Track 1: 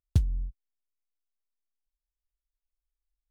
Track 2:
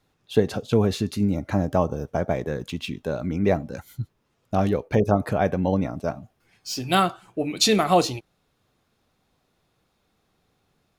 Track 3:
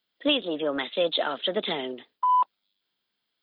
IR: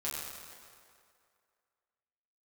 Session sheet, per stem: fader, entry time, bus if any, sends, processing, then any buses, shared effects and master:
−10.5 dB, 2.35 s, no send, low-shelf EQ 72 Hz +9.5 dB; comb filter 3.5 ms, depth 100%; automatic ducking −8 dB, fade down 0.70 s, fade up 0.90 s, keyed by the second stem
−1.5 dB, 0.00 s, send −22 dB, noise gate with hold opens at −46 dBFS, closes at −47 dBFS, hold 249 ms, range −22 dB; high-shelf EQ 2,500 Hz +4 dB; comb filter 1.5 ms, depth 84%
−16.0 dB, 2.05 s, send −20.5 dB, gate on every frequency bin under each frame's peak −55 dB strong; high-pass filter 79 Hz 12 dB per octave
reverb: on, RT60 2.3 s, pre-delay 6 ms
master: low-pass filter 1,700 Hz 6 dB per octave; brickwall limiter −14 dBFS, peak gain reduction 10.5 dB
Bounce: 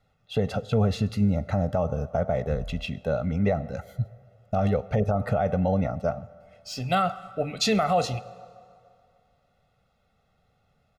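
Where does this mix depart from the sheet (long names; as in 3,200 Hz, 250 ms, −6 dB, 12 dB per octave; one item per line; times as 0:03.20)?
stem 2: missing noise gate with hold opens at −46 dBFS, closes at −47 dBFS, hold 249 ms, range −22 dB
stem 3: muted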